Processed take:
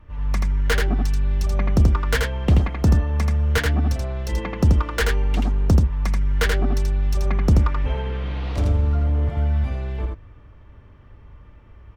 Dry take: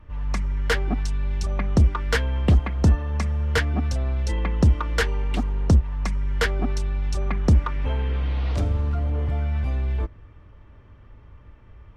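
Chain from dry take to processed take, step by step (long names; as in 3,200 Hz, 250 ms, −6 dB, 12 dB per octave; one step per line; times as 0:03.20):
stylus tracing distortion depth 0.08 ms
on a send: single-tap delay 82 ms −3.5 dB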